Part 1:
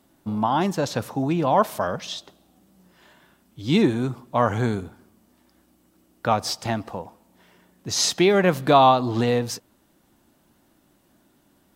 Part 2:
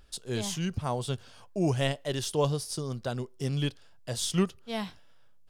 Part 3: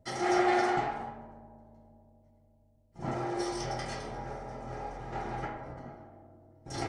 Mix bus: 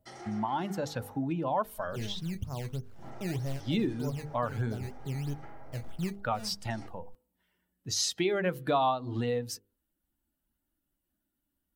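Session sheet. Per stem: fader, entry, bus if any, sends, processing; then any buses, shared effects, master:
+1.5 dB, 0.00 s, no send, spectral dynamics exaggerated over time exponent 1.5
−9.5 dB, 1.65 s, no send, Savitzky-Golay smoothing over 25 samples; spectral tilt −3.5 dB per octave; sample-and-hold swept by an LFO 14×, swing 100% 3.2 Hz
−7.5 dB, 0.00 s, no send, downward compressor 2 to 1, threshold −40 dBFS, peak gain reduction 10 dB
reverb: not used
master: mains-hum notches 50/100/150/200/250/300/350/400/450/500 Hz; downward compressor 2 to 1, threshold −34 dBFS, peak gain reduction 13 dB

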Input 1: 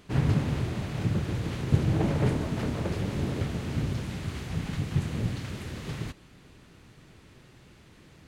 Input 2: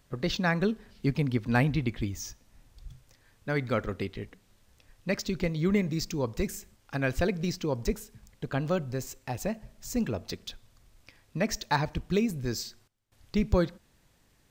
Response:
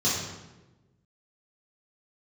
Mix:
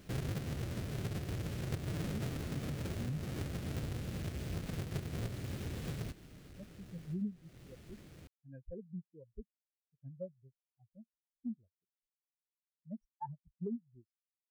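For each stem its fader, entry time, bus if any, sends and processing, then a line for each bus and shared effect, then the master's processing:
−6.0 dB, 0.00 s, no send, each half-wave held at its own peak; parametric band 940 Hz −8 dB 0.83 octaves
−0.5 dB, 1.50 s, no send, every bin expanded away from the loudest bin 4 to 1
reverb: not used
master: downward compressor 4 to 1, threshold −38 dBFS, peak gain reduction 16.5 dB

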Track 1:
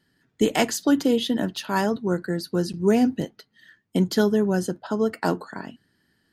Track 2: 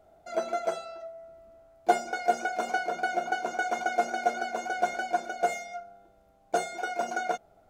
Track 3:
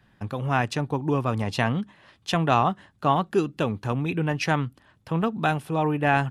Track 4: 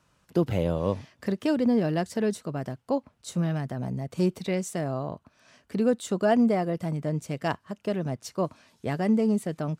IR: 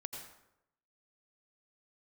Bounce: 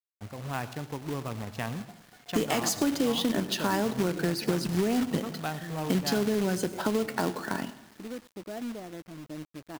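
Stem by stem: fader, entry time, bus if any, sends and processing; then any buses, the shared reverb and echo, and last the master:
+1.5 dB, 1.95 s, send −7.5 dB, brickwall limiter −15.5 dBFS, peak gain reduction 7.5 dB
−18.0 dB, 0.00 s, no send, downward compressor 2 to 1, threshold −46 dBFS, peak gain reduction 16 dB
−13.0 dB, 0.00 s, send −5.5 dB, adaptive Wiener filter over 15 samples
−18.5 dB, 2.25 s, send −19 dB, low-pass filter 2,400 Hz 12 dB per octave; parametric band 310 Hz +13.5 dB 0.31 octaves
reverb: on, RT60 0.85 s, pre-delay 78 ms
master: log-companded quantiser 4 bits; downward compressor 4 to 1, threshold −24 dBFS, peak gain reduction 8.5 dB

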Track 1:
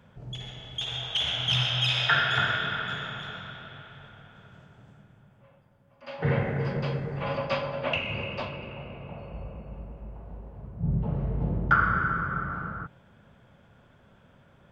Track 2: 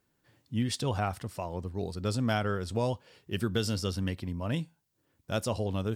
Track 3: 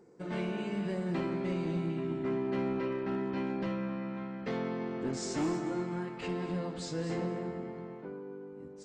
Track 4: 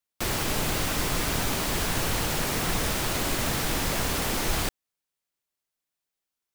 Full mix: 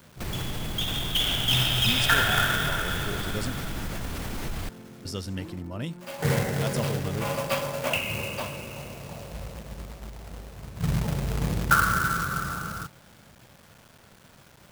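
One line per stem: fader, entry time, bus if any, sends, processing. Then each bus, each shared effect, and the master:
+0.5 dB, 0.00 s, no bus, no send, log-companded quantiser 4 bits
−2.0 dB, 1.30 s, muted 0:03.52–0:05.05, no bus, no send, no processing
−14.0 dB, 0.00 s, bus A, no send, no processing
−5.0 dB, 0.00 s, bus A, no send, no processing
bus A: 0.0 dB, bass and treble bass +9 dB, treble −7 dB; brickwall limiter −24.5 dBFS, peak gain reduction 11 dB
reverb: not used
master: high-shelf EQ 5,400 Hz +4.5 dB

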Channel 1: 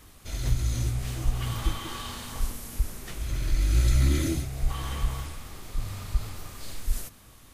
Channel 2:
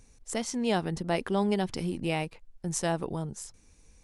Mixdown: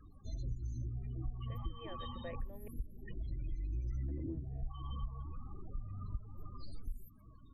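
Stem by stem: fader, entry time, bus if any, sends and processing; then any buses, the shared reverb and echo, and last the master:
−3.0 dB, 0.00 s, no send, spectral peaks only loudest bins 16
−3.5 dB, 1.15 s, muted 0:02.68–0:04.08, no send, formant resonators in series e; low-shelf EQ 410 Hz −10.5 dB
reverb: not used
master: downward compressor 4 to 1, threshold −38 dBFS, peak gain reduction 15 dB

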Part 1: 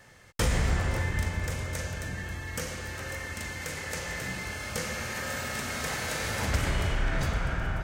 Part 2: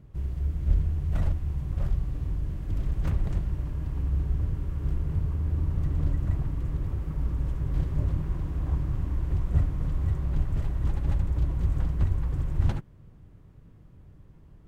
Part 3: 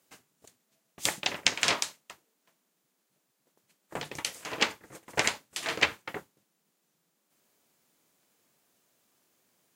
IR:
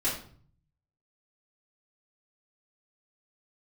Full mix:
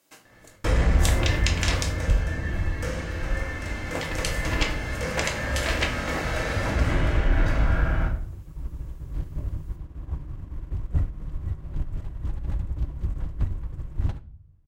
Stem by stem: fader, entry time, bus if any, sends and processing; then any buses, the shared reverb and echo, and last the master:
−5.0 dB, 0.25 s, send −3.5 dB, low-pass filter 2,100 Hz 6 dB per octave; leveller curve on the samples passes 1
+3.0 dB, 1.40 s, send −19.5 dB, soft clipping −16 dBFS, distortion −21 dB; expander for the loud parts 2.5 to 1, over −34 dBFS
+0.5 dB, 0.00 s, send −7.5 dB, downward compressor, threshold −28 dBFS, peak gain reduction 10 dB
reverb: on, RT60 0.50 s, pre-delay 3 ms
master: no processing

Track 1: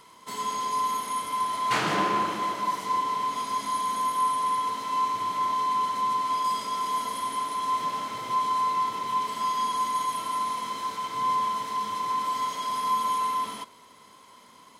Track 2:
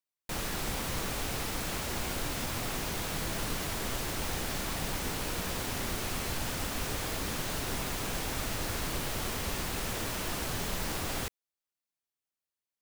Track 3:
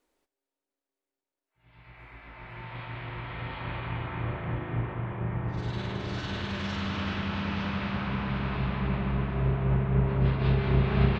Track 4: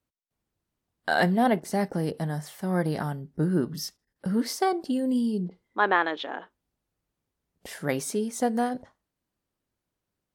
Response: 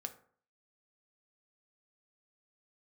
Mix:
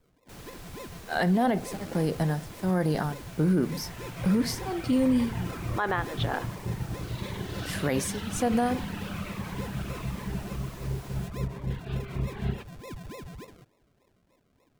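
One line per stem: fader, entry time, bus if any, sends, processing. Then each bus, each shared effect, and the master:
−15.0 dB, 0.00 s, no send, sample-and-hold swept by an LFO 40×, swing 60% 3.4 Hz
−13.5 dB, 0.00 s, no send, no processing
−1.0 dB, 1.45 s, no send, speech leveller within 4 dB; reverb reduction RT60 1.9 s; phaser whose notches keep moving one way falling 1.4 Hz
+2.5 dB, 0.00 s, send −6.5 dB, tremolo along a rectified sine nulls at 1.4 Hz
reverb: on, RT60 0.50 s, pre-delay 3 ms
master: brickwall limiter −16.5 dBFS, peak gain reduction 11.5 dB

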